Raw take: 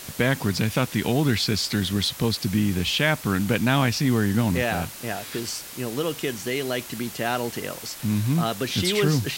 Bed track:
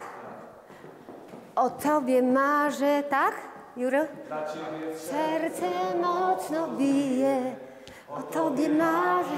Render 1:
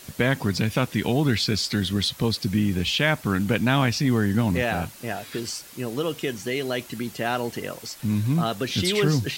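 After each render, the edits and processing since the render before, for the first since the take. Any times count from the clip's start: denoiser 7 dB, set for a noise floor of -39 dBFS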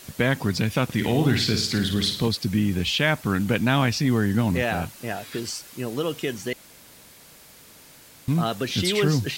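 0.84–2.28 flutter echo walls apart 9.2 m, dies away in 0.49 s; 6.53–8.28 room tone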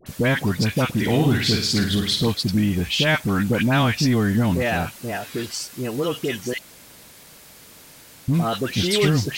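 in parallel at -8 dB: hard clip -18 dBFS, distortion -13 dB; on the sum: dispersion highs, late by 64 ms, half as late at 1200 Hz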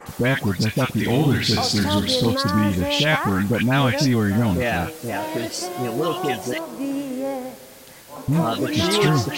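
add bed track -2 dB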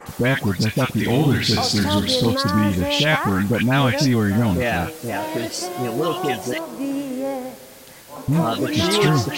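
gain +1 dB

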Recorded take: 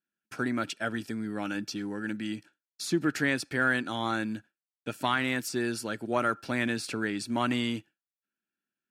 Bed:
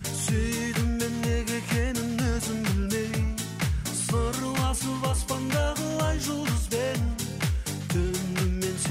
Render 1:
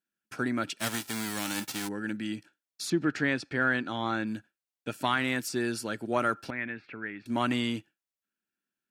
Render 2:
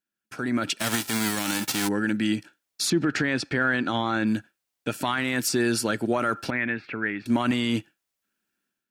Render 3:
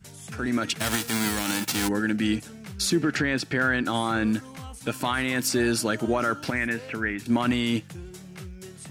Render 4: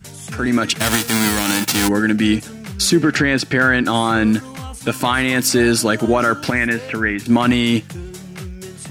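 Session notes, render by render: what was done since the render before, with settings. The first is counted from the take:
0.78–1.87 spectral whitening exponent 0.3; 2.9–4.27 air absorption 100 m; 6.5–7.26 ladder low-pass 2400 Hz, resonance 55%
limiter -24 dBFS, peak gain reduction 10.5 dB; AGC gain up to 10 dB
add bed -14 dB
gain +9 dB

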